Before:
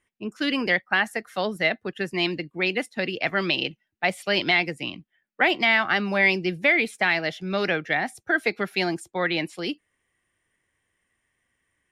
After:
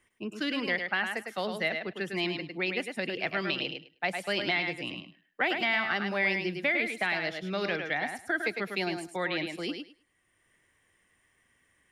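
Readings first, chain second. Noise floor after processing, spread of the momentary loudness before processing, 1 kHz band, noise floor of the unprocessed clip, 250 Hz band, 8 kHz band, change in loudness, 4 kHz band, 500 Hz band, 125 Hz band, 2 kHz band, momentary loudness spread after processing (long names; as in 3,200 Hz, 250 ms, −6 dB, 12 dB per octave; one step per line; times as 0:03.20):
−71 dBFS, 9 LU, −6.5 dB, −78 dBFS, −6.0 dB, −5.0 dB, −6.5 dB, −6.5 dB, −6.0 dB, −6.5 dB, −6.5 dB, 7 LU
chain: feedback echo with a high-pass in the loop 104 ms, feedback 15%, high-pass 170 Hz, level −6 dB
multiband upward and downward compressor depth 40%
level −7.5 dB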